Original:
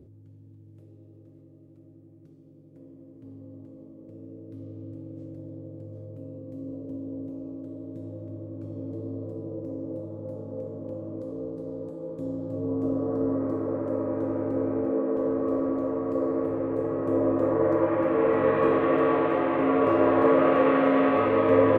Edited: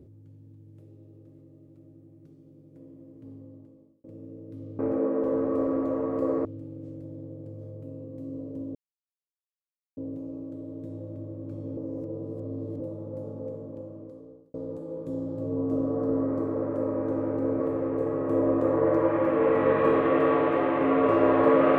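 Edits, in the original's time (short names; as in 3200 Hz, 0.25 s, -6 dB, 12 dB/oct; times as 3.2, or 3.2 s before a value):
3.32–4.04 fade out
7.09 insert silence 1.22 s
8.89–9.92 reverse
10.47–11.66 fade out
14.72–16.38 move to 4.79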